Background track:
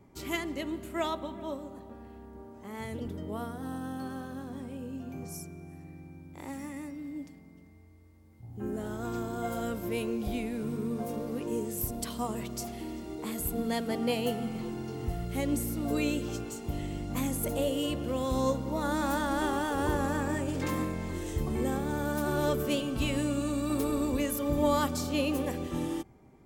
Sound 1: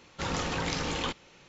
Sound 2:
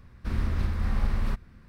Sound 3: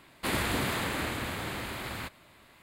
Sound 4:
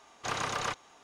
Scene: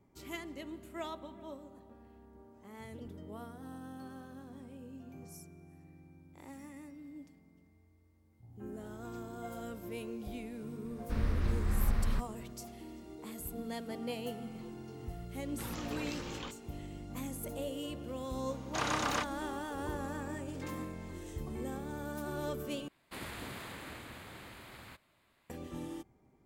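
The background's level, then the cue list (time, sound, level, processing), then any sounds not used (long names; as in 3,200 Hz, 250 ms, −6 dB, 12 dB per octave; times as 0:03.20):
background track −9.5 dB
0:10.85: mix in 2 −4.5 dB
0:15.39: mix in 1 −12.5 dB
0:18.50: mix in 4 −1 dB
0:22.88: overwrite with 3 −14 dB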